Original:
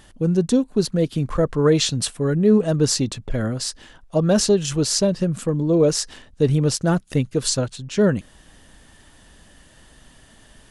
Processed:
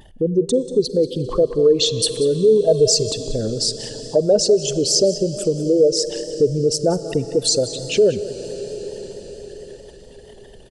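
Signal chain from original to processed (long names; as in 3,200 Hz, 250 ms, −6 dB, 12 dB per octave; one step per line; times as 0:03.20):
spectral envelope exaggerated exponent 2
flat-topped bell 620 Hz +10.5 dB
on a send at −14 dB: convolution reverb RT60 5.6 s, pre-delay 39 ms
on the sum: downward compressor 1.5 to 1, threshold −30 dBFS, peak gain reduction 10 dB
high shelf with overshoot 1,900 Hz +6.5 dB, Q 1.5
notch filter 1,000 Hz, Q 9.3
single-tap delay 187 ms −15 dB
pitch vibrato 4.5 Hz 38 cents
0:02.67–0:03.11: comb filter 1.9 ms, depth 85%
level +2.5 dB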